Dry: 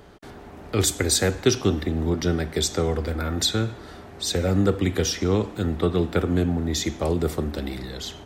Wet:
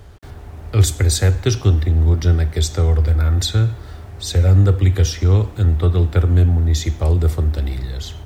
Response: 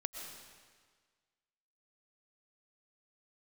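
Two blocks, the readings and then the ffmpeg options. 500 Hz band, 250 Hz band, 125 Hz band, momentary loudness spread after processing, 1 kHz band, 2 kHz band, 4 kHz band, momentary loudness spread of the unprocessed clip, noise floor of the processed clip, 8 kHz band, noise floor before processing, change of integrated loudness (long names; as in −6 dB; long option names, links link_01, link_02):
−1.0 dB, −1.5 dB, +13.0 dB, 8 LU, 0.0 dB, 0.0 dB, 0.0 dB, 11 LU, −37 dBFS, 0.0 dB, −43 dBFS, +7.5 dB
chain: -af "lowshelf=frequency=140:width_type=q:width=1.5:gain=12,acrusher=bits=8:mix=0:aa=0.5"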